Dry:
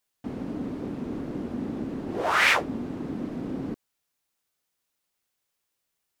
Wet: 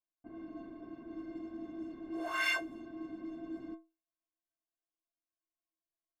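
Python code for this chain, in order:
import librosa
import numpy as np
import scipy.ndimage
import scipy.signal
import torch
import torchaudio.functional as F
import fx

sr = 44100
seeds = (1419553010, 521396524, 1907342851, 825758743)

y = fx.stiff_resonator(x, sr, f0_hz=320.0, decay_s=0.28, stiffness=0.03)
y = fx.env_lowpass(y, sr, base_hz=930.0, full_db=-38.5)
y = F.gain(torch.from_numpy(y), 3.0).numpy()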